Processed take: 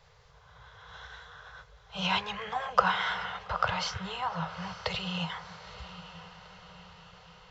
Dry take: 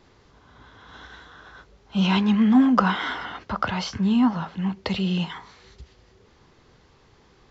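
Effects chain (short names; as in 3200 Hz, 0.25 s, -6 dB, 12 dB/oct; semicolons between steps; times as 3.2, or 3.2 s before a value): elliptic band-stop 160–460 Hz, stop band 40 dB; diffused feedback echo 0.918 s, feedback 55%, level -14 dB; gain -2 dB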